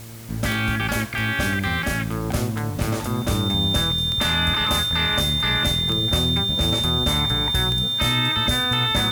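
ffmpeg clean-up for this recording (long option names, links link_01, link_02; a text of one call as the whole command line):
ffmpeg -i in.wav -af "adeclick=threshold=4,bandreject=frequency=113.3:width_type=h:width=4,bandreject=frequency=226.6:width_type=h:width=4,bandreject=frequency=339.9:width_type=h:width=4,bandreject=frequency=453.2:width_type=h:width=4,bandreject=frequency=566.5:width_type=h:width=4,bandreject=frequency=679.8:width_type=h:width=4,bandreject=frequency=3600:width=30,afwtdn=0.0063" out.wav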